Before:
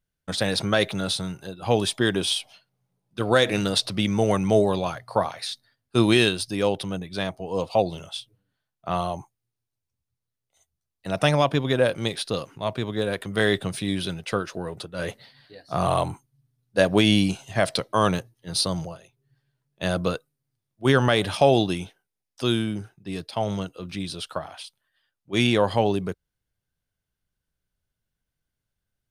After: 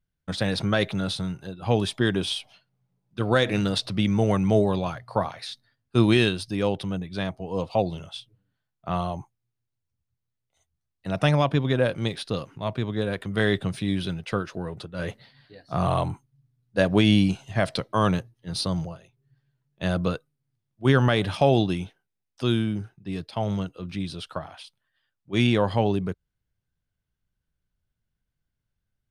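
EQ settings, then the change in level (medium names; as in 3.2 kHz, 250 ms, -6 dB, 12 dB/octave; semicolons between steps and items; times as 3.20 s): tone controls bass +4 dB, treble 0 dB; peaking EQ 570 Hz -2 dB 1.5 oct; treble shelf 5.6 kHz -10.5 dB; -1.0 dB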